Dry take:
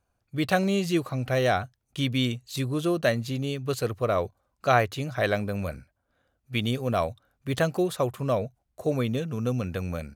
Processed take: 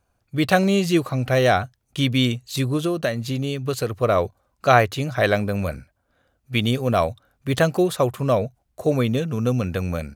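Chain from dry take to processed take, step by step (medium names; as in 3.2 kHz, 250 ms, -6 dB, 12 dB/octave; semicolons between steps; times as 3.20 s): 2.76–4.03 s: compression 4:1, threshold -26 dBFS, peak gain reduction 7.5 dB; trim +6 dB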